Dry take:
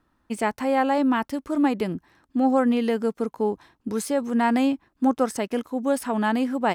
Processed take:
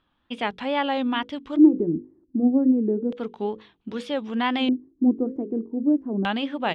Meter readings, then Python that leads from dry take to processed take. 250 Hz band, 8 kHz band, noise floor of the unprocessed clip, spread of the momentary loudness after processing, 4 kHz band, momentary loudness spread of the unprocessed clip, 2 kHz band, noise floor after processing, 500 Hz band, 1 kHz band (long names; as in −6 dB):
+1.5 dB, below −20 dB, −70 dBFS, 13 LU, +6.0 dB, 9 LU, −1.0 dB, −70 dBFS, −3.0 dB, −4.5 dB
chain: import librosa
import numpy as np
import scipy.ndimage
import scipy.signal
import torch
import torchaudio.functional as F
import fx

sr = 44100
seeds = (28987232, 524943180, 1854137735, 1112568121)

y = fx.hum_notches(x, sr, base_hz=50, count=10)
y = fx.wow_flutter(y, sr, seeds[0], rate_hz=2.1, depth_cents=140.0)
y = fx.filter_lfo_lowpass(y, sr, shape='square', hz=0.32, low_hz=340.0, high_hz=3300.0, q=5.2)
y = y * librosa.db_to_amplitude(-3.5)